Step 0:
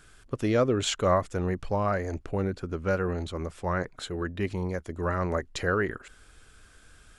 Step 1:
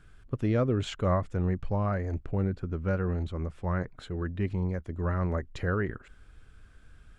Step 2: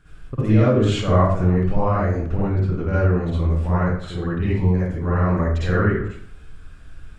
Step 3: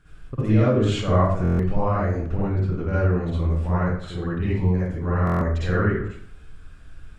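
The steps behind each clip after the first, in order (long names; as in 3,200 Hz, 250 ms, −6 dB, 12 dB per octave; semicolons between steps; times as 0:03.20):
bass and treble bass +9 dB, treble −10 dB; level −5.5 dB
convolution reverb RT60 0.55 s, pre-delay 47 ms, DRR −10 dB
buffer that repeats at 0:01.43/0:05.25, samples 1,024, times 6; level −2.5 dB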